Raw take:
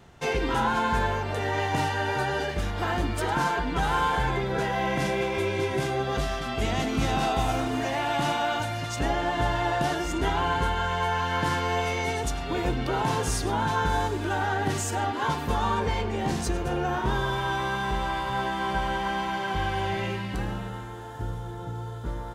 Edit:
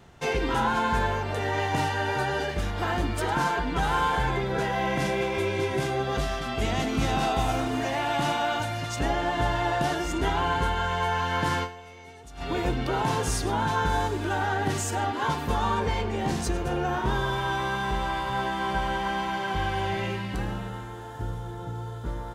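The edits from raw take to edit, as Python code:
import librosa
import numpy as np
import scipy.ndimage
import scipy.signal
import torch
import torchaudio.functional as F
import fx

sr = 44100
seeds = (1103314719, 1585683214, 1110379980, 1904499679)

y = fx.edit(x, sr, fx.fade_down_up(start_s=11.63, length_s=0.79, db=-18.5, fade_s=0.36, curve='exp'), tone=tone)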